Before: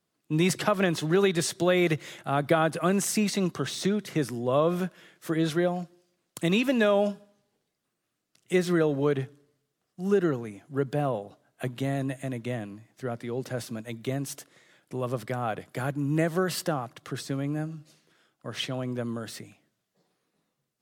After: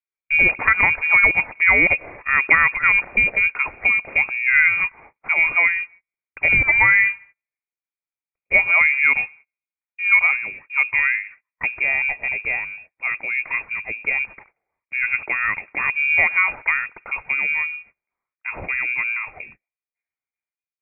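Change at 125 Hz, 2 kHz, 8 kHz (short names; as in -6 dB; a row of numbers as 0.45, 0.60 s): -9.5 dB, +21.5 dB, under -40 dB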